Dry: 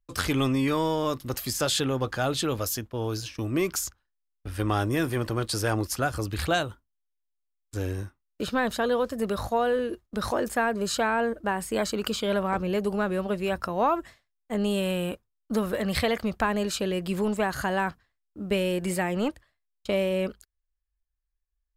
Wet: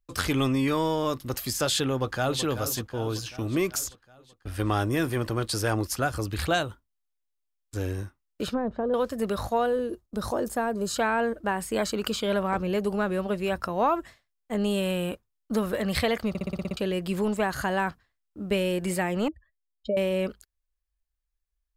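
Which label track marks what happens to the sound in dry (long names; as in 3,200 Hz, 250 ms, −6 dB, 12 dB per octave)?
1.890000	2.430000	delay throw 380 ms, feedback 60%, level −11 dB
8.500000	8.940000	treble cut that deepens with the level closes to 650 Hz, closed at −24 dBFS
9.660000	10.960000	parametric band 2,200 Hz −9.5 dB 1.6 octaves
16.290000	16.290000	stutter in place 0.06 s, 8 plays
19.280000	19.970000	expanding power law on the bin magnitudes exponent 2.6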